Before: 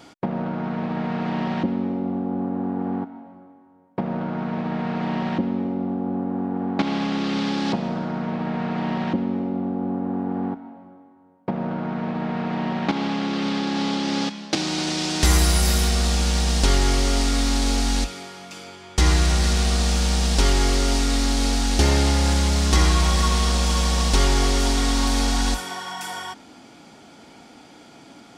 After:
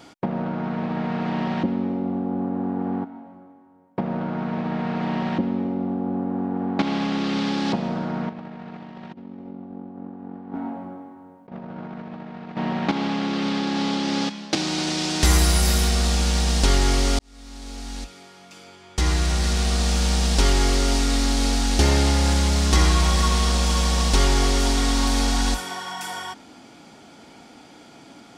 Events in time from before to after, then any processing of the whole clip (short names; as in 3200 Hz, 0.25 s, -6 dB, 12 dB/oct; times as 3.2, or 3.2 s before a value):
8.29–12.57 negative-ratio compressor -33 dBFS, ratio -0.5
17.19–20.07 fade in